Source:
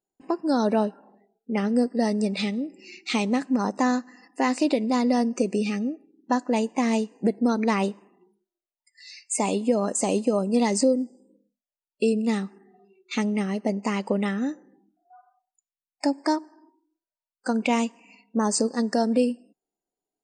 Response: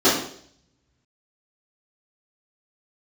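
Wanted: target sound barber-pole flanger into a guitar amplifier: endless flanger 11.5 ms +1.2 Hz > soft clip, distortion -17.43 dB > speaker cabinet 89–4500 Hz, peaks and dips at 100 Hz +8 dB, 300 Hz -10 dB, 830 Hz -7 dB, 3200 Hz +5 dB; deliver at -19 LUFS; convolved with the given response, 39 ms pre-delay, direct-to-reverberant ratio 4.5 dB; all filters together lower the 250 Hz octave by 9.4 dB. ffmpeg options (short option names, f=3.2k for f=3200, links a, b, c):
-filter_complex "[0:a]equalizer=f=250:t=o:g=-8,asplit=2[a][b];[1:a]atrim=start_sample=2205,adelay=39[c];[b][c]afir=irnorm=-1:irlink=0,volume=-26.5dB[d];[a][d]amix=inputs=2:normalize=0,asplit=2[e][f];[f]adelay=11.5,afreqshift=1.2[g];[e][g]amix=inputs=2:normalize=1,asoftclip=threshold=-20dB,highpass=89,equalizer=f=100:t=q:w=4:g=8,equalizer=f=300:t=q:w=4:g=-10,equalizer=f=830:t=q:w=4:g=-7,equalizer=f=3.2k:t=q:w=4:g=5,lowpass=f=4.5k:w=0.5412,lowpass=f=4.5k:w=1.3066,volume=14dB"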